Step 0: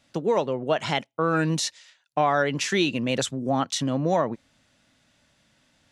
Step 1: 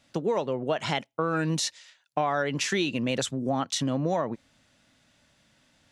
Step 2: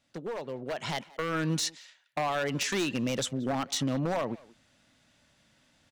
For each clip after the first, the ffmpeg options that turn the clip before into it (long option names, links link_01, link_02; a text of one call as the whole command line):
ffmpeg -i in.wav -af "acompressor=threshold=-24dB:ratio=2.5" out.wav
ffmpeg -i in.wav -filter_complex "[0:a]aeval=exprs='0.0891*(abs(mod(val(0)/0.0891+3,4)-2)-1)':channel_layout=same,asplit=2[link_01][link_02];[link_02]adelay=180,highpass=300,lowpass=3400,asoftclip=type=hard:threshold=-31dB,volume=-18dB[link_03];[link_01][link_03]amix=inputs=2:normalize=0,dynaudnorm=framelen=550:gausssize=3:maxgain=7.5dB,volume=-9dB" out.wav